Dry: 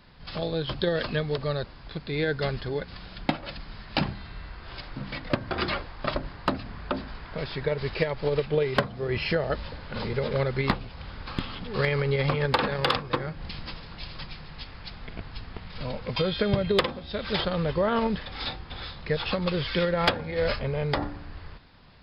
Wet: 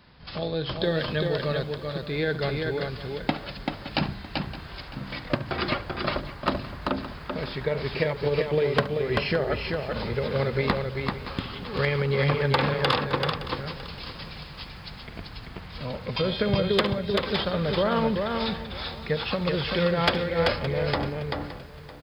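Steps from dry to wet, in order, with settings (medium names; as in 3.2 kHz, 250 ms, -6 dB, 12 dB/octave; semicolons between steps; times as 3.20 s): high-pass 44 Hz 12 dB/octave; on a send: multi-tap echo 71/387 ms -16.5/-4 dB; on the sum: bit-crushed delay 567 ms, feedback 35%, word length 8-bit, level -15 dB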